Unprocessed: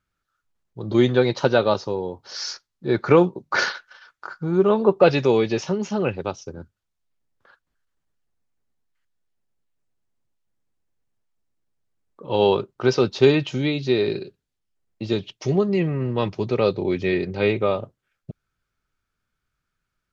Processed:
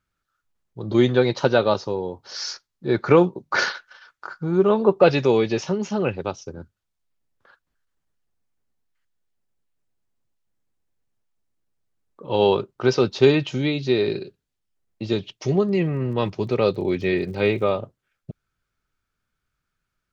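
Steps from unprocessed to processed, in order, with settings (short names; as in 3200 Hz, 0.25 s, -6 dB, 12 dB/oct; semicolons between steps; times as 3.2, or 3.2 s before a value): 15.68–17.69 crackle 18/s -> 66/s -40 dBFS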